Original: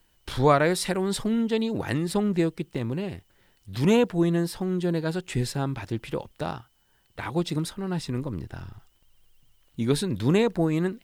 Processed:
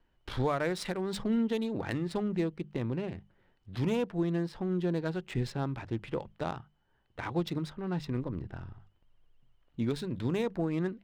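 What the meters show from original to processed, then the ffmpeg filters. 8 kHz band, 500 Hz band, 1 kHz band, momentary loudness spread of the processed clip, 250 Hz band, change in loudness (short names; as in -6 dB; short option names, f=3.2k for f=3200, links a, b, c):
-14.0 dB, -8.0 dB, -8.5 dB, 10 LU, -6.5 dB, -7.0 dB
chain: -af "adynamicsmooth=sensitivity=5.5:basefreq=2.2k,alimiter=limit=-17dB:level=0:latency=1:release=425,bandreject=f=50:t=h:w=6,bandreject=f=100:t=h:w=6,bandreject=f=150:t=h:w=6,bandreject=f=200:t=h:w=6,volume=-3.5dB"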